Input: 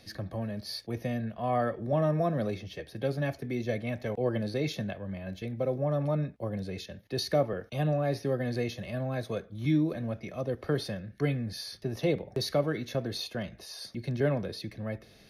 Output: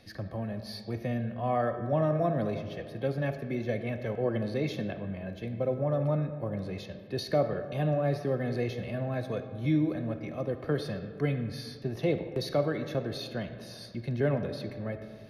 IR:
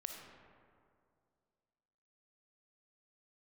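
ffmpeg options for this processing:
-filter_complex "[0:a]asplit=2[s0][s1];[1:a]atrim=start_sample=2205,lowpass=4000[s2];[s1][s2]afir=irnorm=-1:irlink=0,volume=1.33[s3];[s0][s3]amix=inputs=2:normalize=0,volume=0.531"

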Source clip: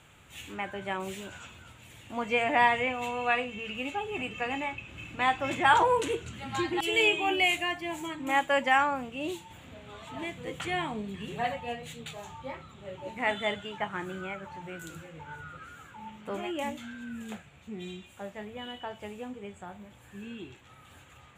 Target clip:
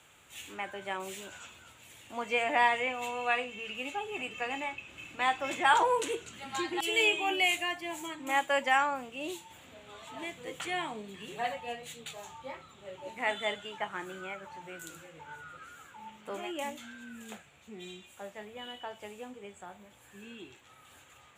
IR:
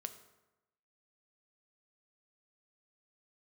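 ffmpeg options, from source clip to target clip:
-filter_complex "[0:a]bass=f=250:g=-9,treble=f=4000:g=5,acrossover=split=150|3000[s0][s1][s2];[s0]alimiter=level_in=37.6:limit=0.0631:level=0:latency=1,volume=0.0266[s3];[s3][s1][s2]amix=inputs=3:normalize=0,volume=0.75"

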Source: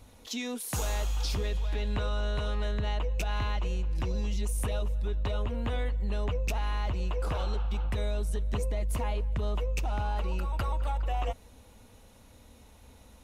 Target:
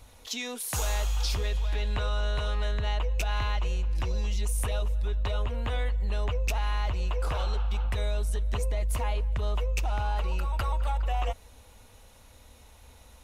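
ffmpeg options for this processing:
-af "equalizer=f=220:t=o:w=2:g=-9,volume=1.5"

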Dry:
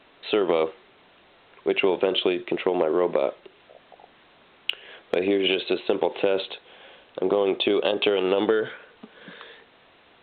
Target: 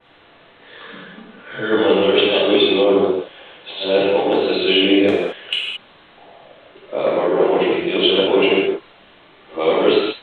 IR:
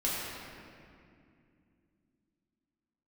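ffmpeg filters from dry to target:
-filter_complex "[0:a]areverse[s0];[1:a]atrim=start_sample=2205,afade=t=out:st=0.17:d=0.01,atrim=end_sample=7938,asetrate=23373,aresample=44100[s1];[s0][s1]afir=irnorm=-1:irlink=0,adynamicequalizer=threshold=0.0316:dfrequency=3000:dqfactor=0.7:tfrequency=3000:tqfactor=0.7:attack=5:release=100:ratio=0.375:range=2.5:mode=boostabove:tftype=highshelf,volume=0.708"

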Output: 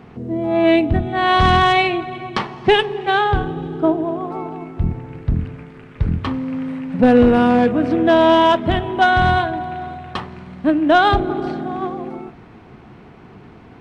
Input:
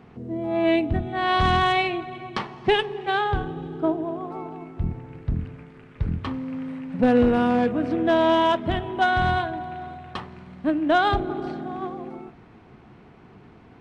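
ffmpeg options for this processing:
-af "acontrast=26,volume=1.26"

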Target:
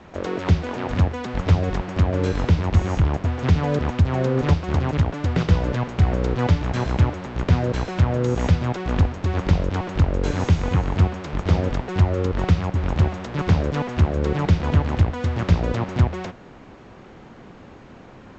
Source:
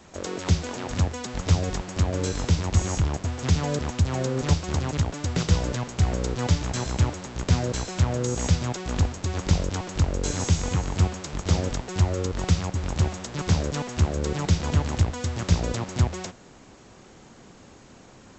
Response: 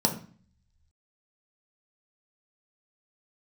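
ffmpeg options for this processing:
-filter_complex "[0:a]lowpass=2600,asplit=2[s0][s1];[s1]alimiter=limit=0.158:level=0:latency=1:release=323,volume=1[s2];[s0][s2]amix=inputs=2:normalize=0"

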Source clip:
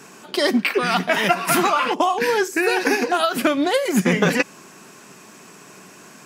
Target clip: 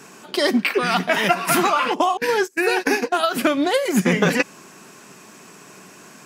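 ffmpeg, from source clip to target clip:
-filter_complex "[0:a]asettb=1/sr,asplit=3[s0][s1][s2];[s0]atrim=end=2.174[s3];[s1]atrim=start=2.17:end=3.27,asetpts=PTS-STARTPTS,afade=t=in:d=0.004:c=qsin,afade=t=out:st=1.096:d=0.004:c=qsin,agate=range=0.0631:threshold=0.1:ratio=16:detection=peak[s4];[s2]atrim=start=3.266[s5];[s3][s4]acrossfade=d=0.004:c1=hsin:c2=qsin[s6];[s6][s5]acrossfade=d=0.004:c1=qsin:c2=hsin"

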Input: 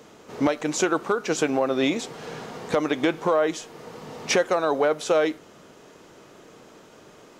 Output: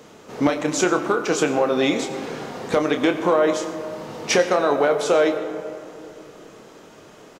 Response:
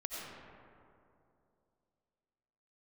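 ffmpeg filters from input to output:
-filter_complex "[0:a]asplit=2[s0][s1];[s1]adelay=28,volume=0.398[s2];[s0][s2]amix=inputs=2:normalize=0,asplit=2[s3][s4];[1:a]atrim=start_sample=2205[s5];[s4][s5]afir=irnorm=-1:irlink=0,volume=0.501[s6];[s3][s6]amix=inputs=2:normalize=0"

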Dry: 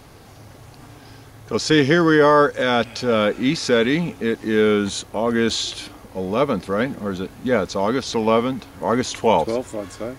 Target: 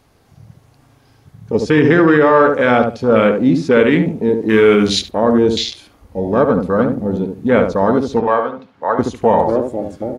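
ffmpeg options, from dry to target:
-filter_complex "[0:a]asettb=1/sr,asplit=3[s0][s1][s2];[s0]atrim=end=4.494[s3];[s1]atrim=start=4.49:end=5.11,asetpts=PTS-STARTPTS,afade=t=in:d=0.004:c=qsin,afade=t=out:st=0.616:d=0.004:c=qsin,highshelf=f=3000:g=10[s4];[s2]atrim=start=5.106[s5];[s3][s4]acrossfade=d=0.004:c1=hsin:c2=qsin[s6];[s6][s5]acrossfade=d=0.004:c1=qsin:c2=hsin,afwtdn=0.0631,asettb=1/sr,asplit=3[s7][s8][s9];[s7]atrim=end=8.204[s10];[s8]atrim=start=8.2:end=8.99,asetpts=PTS-STARTPTS,afade=t=in:d=0.004:c=qsin,afade=t=out:st=0.786:d=0.004:c=qsin,acrossover=split=530 4800:gain=0.126 1 0.0891[s11][s12][s13];[s11][s12][s13]amix=inputs=3:normalize=0[s14];[s9]atrim=start=8.986[s15];[s10][s14]acrossfade=d=0.004:c1=hsin:c2=qsin[s16];[s16][s15]acrossfade=d=0.004:c1=qsin:c2=hsin,asplit=2[s17][s18];[s18]adelay=72,lowpass=f=1000:p=1,volume=0.596,asplit=2[s19][s20];[s20]adelay=72,lowpass=f=1000:p=1,volume=0.22,asplit=2[s21][s22];[s22]adelay=72,lowpass=f=1000:p=1,volume=0.22[s23];[s19][s21][s23]amix=inputs=3:normalize=0[s24];[s17][s24]amix=inputs=2:normalize=0,alimiter=level_in=2.37:limit=0.891:release=50:level=0:latency=1,volume=0.891"

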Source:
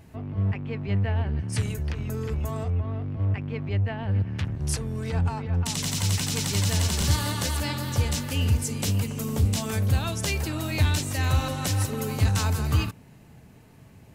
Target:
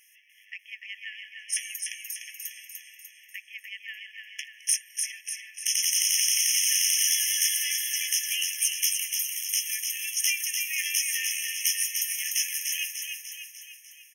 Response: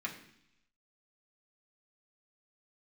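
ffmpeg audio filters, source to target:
-filter_complex "[0:a]highshelf=f=10000:g=-5.5,asplit=2[s0][s1];[s1]aecho=0:1:297|594|891|1188|1485|1782|2079:0.562|0.309|0.17|0.0936|0.0515|0.0283|0.0156[s2];[s0][s2]amix=inputs=2:normalize=0,aeval=exprs='0.211*(cos(1*acos(clip(val(0)/0.211,-1,1)))-cos(1*PI/2))+0.0211*(cos(2*acos(clip(val(0)/0.211,-1,1)))-cos(2*PI/2))':c=same,crystalizer=i=8:c=0,afftfilt=real='re*eq(mod(floor(b*sr/1024/1700),2),1)':imag='im*eq(mod(floor(b*sr/1024/1700),2),1)':win_size=1024:overlap=0.75,volume=0.473"

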